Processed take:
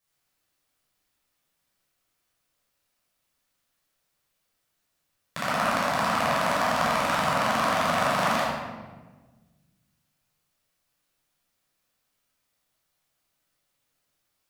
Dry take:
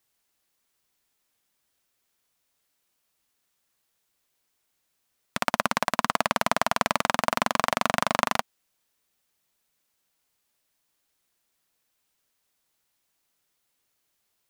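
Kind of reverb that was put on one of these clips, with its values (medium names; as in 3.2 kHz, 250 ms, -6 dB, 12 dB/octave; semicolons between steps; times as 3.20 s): simulated room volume 1000 m³, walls mixed, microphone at 5.8 m; trim -10 dB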